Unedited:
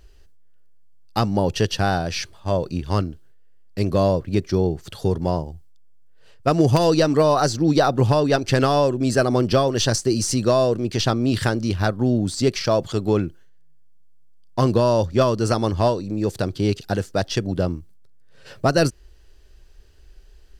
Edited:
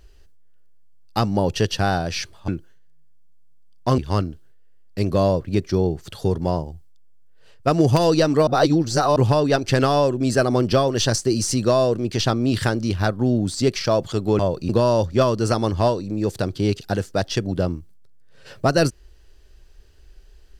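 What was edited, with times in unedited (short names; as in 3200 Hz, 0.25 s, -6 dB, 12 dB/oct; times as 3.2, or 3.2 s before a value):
2.48–2.78 swap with 13.19–14.69
7.27–7.96 reverse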